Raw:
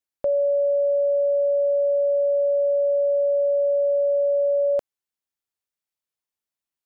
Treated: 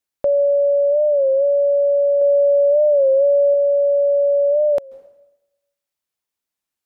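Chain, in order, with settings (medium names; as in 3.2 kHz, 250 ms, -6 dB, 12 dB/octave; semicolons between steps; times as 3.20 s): plate-style reverb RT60 0.95 s, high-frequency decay 0.95×, pre-delay 120 ms, DRR 19.5 dB; 2.21–3.54 s: dynamic bell 500 Hz, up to +5 dB, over -40 dBFS, Q 5.2; warped record 33 1/3 rpm, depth 100 cents; trim +5 dB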